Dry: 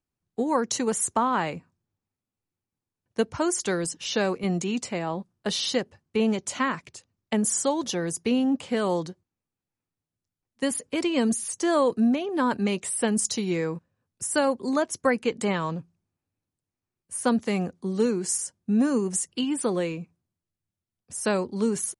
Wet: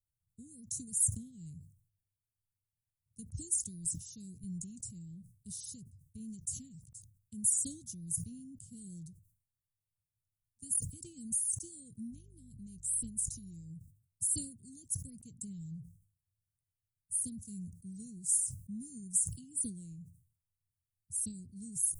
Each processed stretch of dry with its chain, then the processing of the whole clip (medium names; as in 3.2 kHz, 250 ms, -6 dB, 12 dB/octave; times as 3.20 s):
12.10–13.69 s: compression 2.5:1, threshold -29 dBFS + mains buzz 50 Hz, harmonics 9, -54 dBFS -1 dB/octave
whole clip: elliptic band-stop 120–8700 Hz, stop band 80 dB; decay stretcher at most 110 dB/s